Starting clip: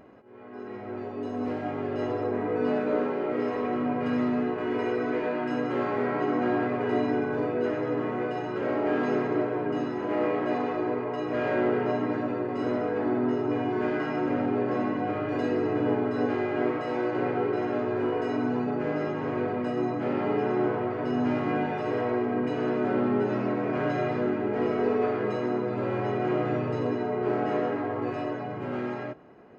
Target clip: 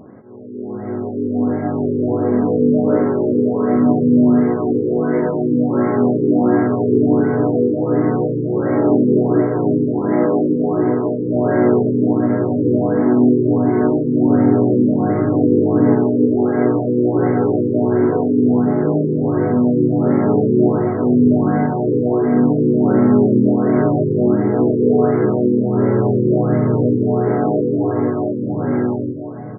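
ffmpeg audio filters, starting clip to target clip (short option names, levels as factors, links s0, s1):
-af "equalizer=f=160:w=0.52:g=11.5,aecho=1:1:963:0.376,afftfilt=real='re*lt(b*sr/1024,530*pow(2300/530,0.5+0.5*sin(2*PI*1.4*pts/sr)))':imag='im*lt(b*sr/1024,530*pow(2300/530,0.5+0.5*sin(2*PI*1.4*pts/sr)))':win_size=1024:overlap=0.75,volume=1.88"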